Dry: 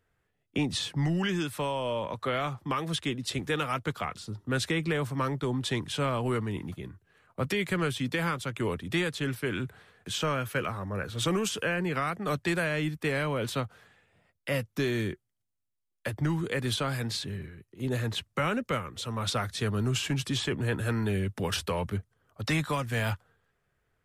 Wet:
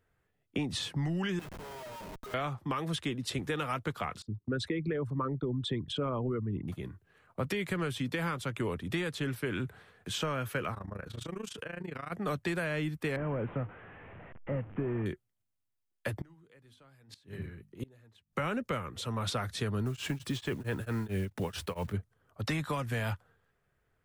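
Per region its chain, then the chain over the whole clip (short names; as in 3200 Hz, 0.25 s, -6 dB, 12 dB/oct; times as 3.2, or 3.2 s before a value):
1.39–2.34 metallic resonator 190 Hz, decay 0.21 s, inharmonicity 0.03 + Schmitt trigger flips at -47.5 dBFS
4.22–6.68 formant sharpening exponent 2 + gate -42 dBFS, range -18 dB
10.74–12.12 high shelf 12000 Hz -5.5 dB + compressor 4:1, threshold -34 dBFS + AM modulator 27 Hz, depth 80%
13.16–15.06 delta modulation 16 kbps, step -41 dBFS + air absorption 480 m
16.21–18.33 notches 50/100/150/200/250 Hz + flipped gate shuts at -25 dBFS, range -29 dB
19.86–21.94 block floating point 5-bit + beating tremolo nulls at 4.5 Hz
whole clip: bell 6300 Hz -3.5 dB 2.7 oct; compressor, threshold -29 dBFS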